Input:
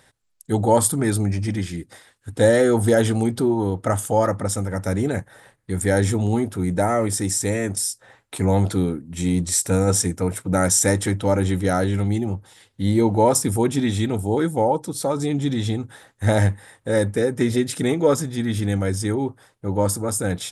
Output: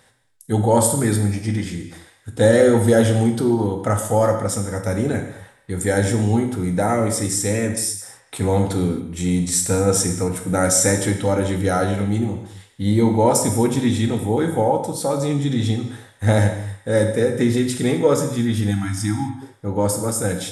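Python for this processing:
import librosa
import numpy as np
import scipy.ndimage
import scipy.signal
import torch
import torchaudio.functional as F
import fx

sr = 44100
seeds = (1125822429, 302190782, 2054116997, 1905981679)

y = fx.echo_banded(x, sr, ms=210, feedback_pct=41, hz=2300.0, wet_db=-21.0)
y = fx.rev_gated(y, sr, seeds[0], gate_ms=290, shape='falling', drr_db=4.0)
y = fx.spec_erase(y, sr, start_s=18.71, length_s=0.71, low_hz=330.0, high_hz=670.0)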